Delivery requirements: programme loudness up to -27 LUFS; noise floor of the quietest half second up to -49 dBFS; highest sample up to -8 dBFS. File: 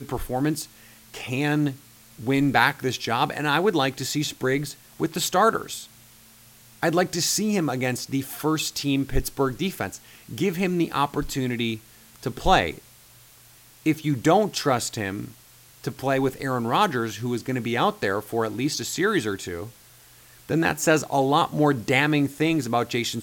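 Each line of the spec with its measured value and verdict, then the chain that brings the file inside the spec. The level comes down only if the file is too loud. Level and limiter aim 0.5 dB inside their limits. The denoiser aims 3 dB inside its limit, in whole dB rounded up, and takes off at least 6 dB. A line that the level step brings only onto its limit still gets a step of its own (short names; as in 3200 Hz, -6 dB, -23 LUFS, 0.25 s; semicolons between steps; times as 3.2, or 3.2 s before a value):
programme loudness -24.0 LUFS: fail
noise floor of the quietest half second -52 dBFS: OK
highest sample -3.0 dBFS: fail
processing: gain -3.5 dB; limiter -8.5 dBFS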